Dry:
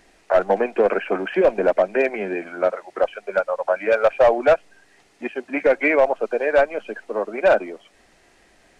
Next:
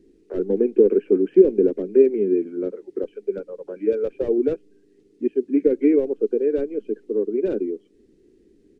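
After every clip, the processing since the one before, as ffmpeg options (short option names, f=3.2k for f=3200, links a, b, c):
-af "firequalizer=gain_entry='entry(110,0);entry(280,10);entry(420,10);entry(640,-26);entry(3600,-15)':delay=0.05:min_phase=1,volume=-2dB"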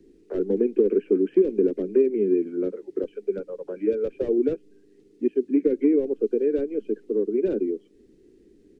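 -filter_complex "[0:a]acrossover=split=190|440|1400[a][b][c][d];[a]acompressor=threshold=-40dB:ratio=4[e];[b]acompressor=threshold=-18dB:ratio=4[f];[c]acompressor=threshold=-35dB:ratio=4[g];[d]acompressor=threshold=-52dB:ratio=4[h];[e][f][g][h]amix=inputs=4:normalize=0,volume=1dB"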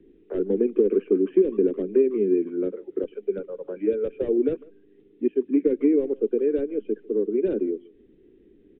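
-filter_complex "[0:a]asplit=2[a][b];[b]adelay=150,highpass=300,lowpass=3.4k,asoftclip=type=hard:threshold=-17dB,volume=-22dB[c];[a][c]amix=inputs=2:normalize=0,aresample=8000,aresample=44100"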